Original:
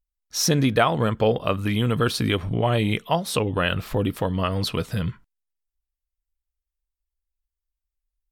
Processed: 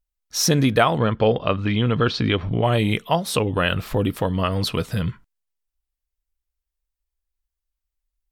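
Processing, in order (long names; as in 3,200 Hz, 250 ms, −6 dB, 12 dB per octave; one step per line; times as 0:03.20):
0:00.98–0:02.63: low-pass filter 5,000 Hz 24 dB per octave
level +2 dB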